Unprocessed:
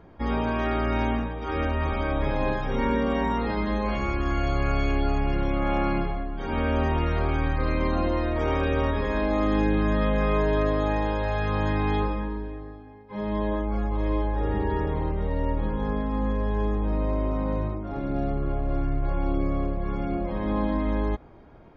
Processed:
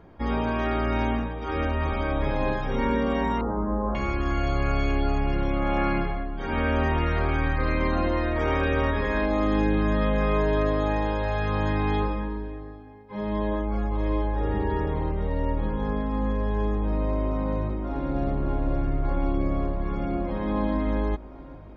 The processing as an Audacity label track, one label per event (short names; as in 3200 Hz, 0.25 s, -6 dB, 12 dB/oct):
3.410000	3.950000	steep low-pass 1400 Hz 48 dB/oct
5.770000	9.260000	dynamic EQ 1800 Hz, up to +5 dB, over -46 dBFS, Q 1.6
17.120000	18.140000	echo throw 0.57 s, feedback 80%, level -7.5 dB